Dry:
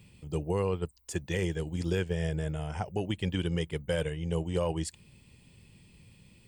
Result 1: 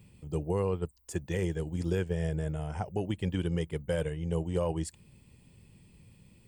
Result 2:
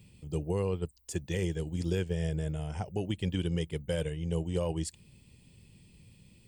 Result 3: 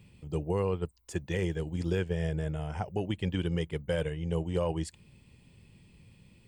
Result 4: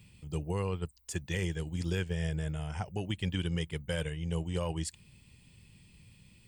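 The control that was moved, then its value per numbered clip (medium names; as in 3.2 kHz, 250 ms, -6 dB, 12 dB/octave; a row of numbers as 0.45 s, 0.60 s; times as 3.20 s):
peaking EQ, frequency: 3.5 kHz, 1.3 kHz, 16 kHz, 480 Hz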